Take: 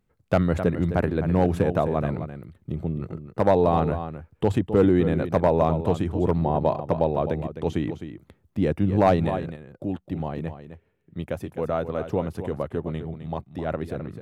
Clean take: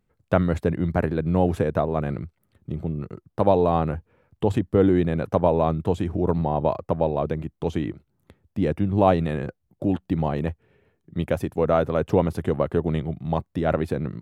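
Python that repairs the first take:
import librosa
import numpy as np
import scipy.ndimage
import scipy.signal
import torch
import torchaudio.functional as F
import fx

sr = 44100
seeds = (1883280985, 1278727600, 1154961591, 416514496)

y = fx.fix_declip(x, sr, threshold_db=-9.0)
y = fx.fix_echo_inverse(y, sr, delay_ms=259, level_db=-10.5)
y = fx.gain(y, sr, db=fx.steps((0.0, 0.0), (9.3, 6.0)))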